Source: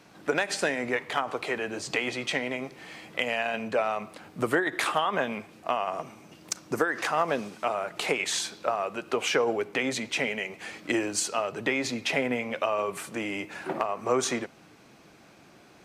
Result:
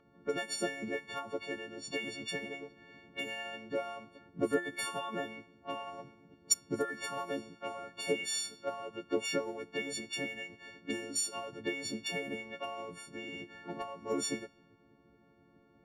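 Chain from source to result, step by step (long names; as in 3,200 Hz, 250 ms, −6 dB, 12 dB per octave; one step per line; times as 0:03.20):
every partial snapped to a pitch grid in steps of 4 semitones
low-pass that shuts in the quiet parts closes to 1,400 Hz, open at −19.5 dBFS
harmonic and percussive parts rebalanced harmonic −17 dB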